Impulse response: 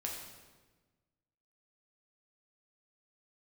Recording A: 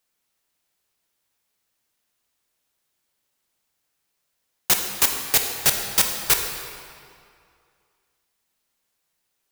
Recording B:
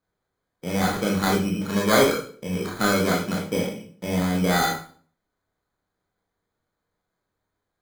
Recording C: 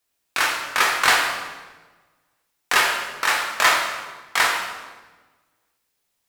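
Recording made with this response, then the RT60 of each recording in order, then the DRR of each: C; 2.3, 0.45, 1.3 s; 3.5, -2.5, -2.0 dB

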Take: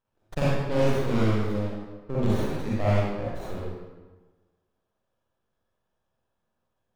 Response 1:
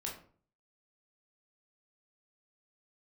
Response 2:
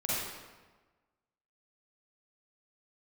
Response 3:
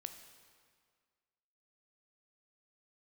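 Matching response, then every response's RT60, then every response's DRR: 2; 0.45, 1.3, 1.9 s; -2.5, -9.0, 7.0 dB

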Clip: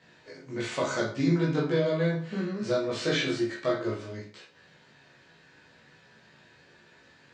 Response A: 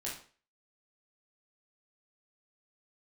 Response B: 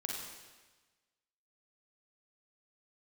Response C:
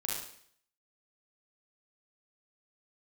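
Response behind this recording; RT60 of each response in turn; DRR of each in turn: A; 0.40, 1.3, 0.60 s; -5.5, -1.5, -4.0 dB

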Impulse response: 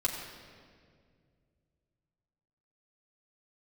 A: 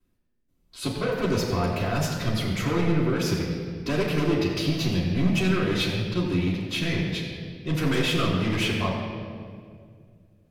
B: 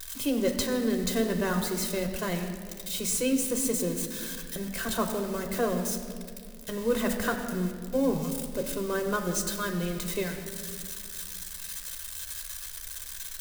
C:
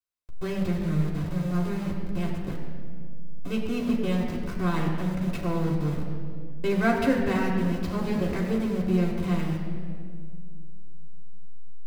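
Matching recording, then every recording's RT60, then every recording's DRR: C; 2.1, 2.1, 2.1 s; -9.5, 3.0, -3.0 dB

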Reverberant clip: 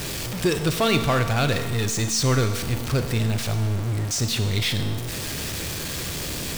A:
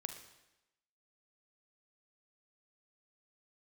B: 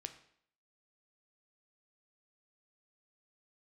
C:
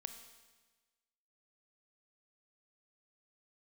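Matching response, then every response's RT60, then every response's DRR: C; 0.95, 0.65, 1.3 s; 6.5, 7.5, 7.5 dB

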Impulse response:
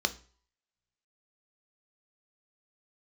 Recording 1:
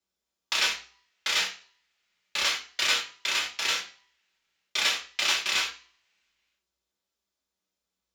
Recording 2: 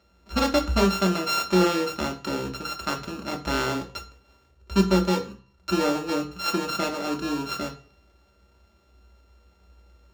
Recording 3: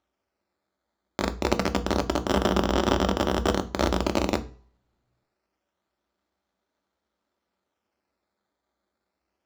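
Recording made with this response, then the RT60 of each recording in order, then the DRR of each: 3; 0.45 s, not exponential, not exponential; -4.5, 1.5, 8.0 dB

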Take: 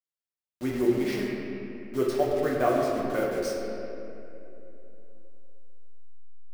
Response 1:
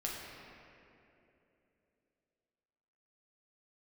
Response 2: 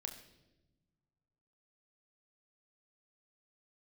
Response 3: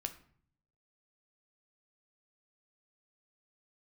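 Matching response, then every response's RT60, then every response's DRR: 1; 3.0 s, not exponential, 0.55 s; -4.0, 4.0, 7.0 dB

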